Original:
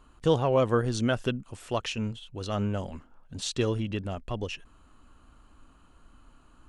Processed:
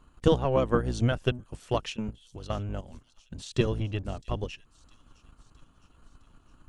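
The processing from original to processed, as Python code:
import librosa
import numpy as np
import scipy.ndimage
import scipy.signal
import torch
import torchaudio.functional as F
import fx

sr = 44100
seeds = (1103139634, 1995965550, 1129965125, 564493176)

y = fx.octave_divider(x, sr, octaves=1, level_db=0.0)
y = fx.level_steps(y, sr, step_db=10, at=(1.94, 3.55))
y = fx.transient(y, sr, attack_db=7, sustain_db=-4)
y = fx.echo_wet_highpass(y, sr, ms=661, feedback_pct=58, hz=5400.0, wet_db=-13.0)
y = y * librosa.db_to_amplitude(-3.5)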